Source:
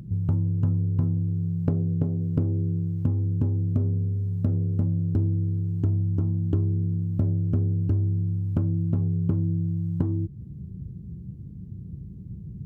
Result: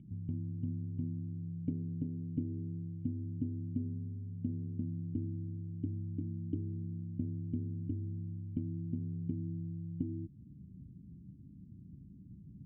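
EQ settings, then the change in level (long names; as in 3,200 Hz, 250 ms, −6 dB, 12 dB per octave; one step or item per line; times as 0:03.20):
formant resonators in series i
−4.0 dB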